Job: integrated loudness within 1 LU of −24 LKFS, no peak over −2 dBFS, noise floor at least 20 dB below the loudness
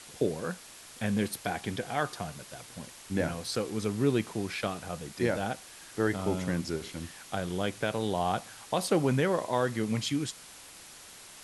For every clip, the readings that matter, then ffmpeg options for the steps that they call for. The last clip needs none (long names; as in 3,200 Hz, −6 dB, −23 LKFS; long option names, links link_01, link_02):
background noise floor −50 dBFS; target noise floor −52 dBFS; integrated loudness −31.5 LKFS; sample peak −14.5 dBFS; target loudness −24.0 LKFS
→ -af "afftdn=noise_reduction=6:noise_floor=-50"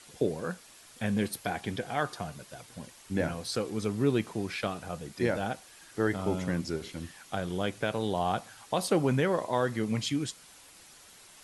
background noise floor −54 dBFS; integrated loudness −32.0 LKFS; sample peak −14.5 dBFS; target loudness −24.0 LKFS
→ -af "volume=8dB"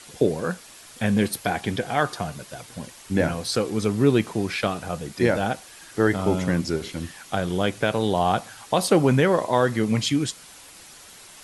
integrated loudness −24.0 LKFS; sample peak −6.5 dBFS; background noise floor −46 dBFS